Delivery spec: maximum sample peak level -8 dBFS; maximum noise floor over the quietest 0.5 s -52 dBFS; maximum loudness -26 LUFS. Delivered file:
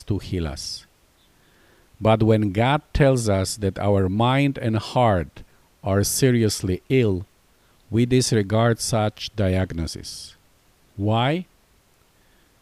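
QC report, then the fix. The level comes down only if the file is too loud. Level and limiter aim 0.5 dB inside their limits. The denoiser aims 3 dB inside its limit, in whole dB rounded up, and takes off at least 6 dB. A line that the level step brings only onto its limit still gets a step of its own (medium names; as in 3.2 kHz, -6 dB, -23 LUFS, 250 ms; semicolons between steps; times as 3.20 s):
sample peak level -4.5 dBFS: fail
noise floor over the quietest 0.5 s -59 dBFS: pass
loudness -21.5 LUFS: fail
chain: trim -5 dB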